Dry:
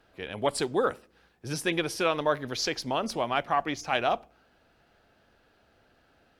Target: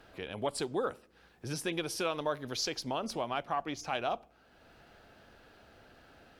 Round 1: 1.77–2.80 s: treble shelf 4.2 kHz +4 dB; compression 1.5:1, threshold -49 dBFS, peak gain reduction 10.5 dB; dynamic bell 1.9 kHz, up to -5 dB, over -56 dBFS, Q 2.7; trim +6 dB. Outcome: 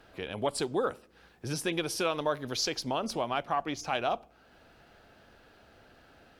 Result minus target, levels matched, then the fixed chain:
compression: peak gain reduction -3.5 dB
1.77–2.80 s: treble shelf 4.2 kHz +4 dB; compression 1.5:1, threshold -59 dBFS, peak gain reduction 14 dB; dynamic bell 1.9 kHz, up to -5 dB, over -56 dBFS, Q 2.7; trim +6 dB

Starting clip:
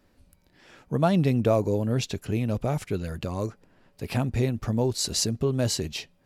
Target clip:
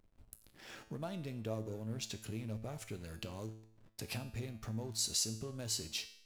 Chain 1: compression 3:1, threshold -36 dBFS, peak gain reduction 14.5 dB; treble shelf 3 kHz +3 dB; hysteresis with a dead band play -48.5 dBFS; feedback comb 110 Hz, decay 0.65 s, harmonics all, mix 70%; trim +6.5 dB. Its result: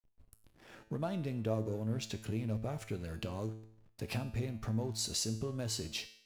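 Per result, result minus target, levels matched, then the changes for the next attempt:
compression: peak gain reduction -5.5 dB; 8 kHz band -5.0 dB
change: compression 3:1, threshold -44.5 dBFS, peak gain reduction 20 dB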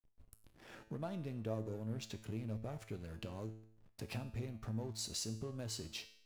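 8 kHz band -5.0 dB
change: treble shelf 3 kHz +12 dB

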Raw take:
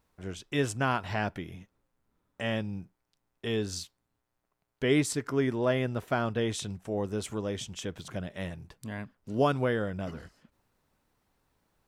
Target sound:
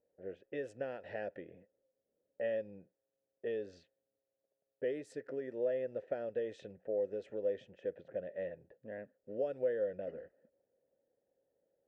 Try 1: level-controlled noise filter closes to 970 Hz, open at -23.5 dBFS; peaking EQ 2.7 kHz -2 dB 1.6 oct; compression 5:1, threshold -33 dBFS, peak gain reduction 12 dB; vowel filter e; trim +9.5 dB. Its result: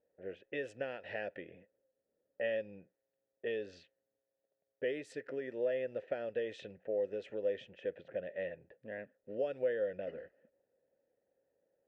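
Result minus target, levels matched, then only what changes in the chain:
2 kHz band +5.5 dB
change: peaking EQ 2.7 kHz -12 dB 1.6 oct

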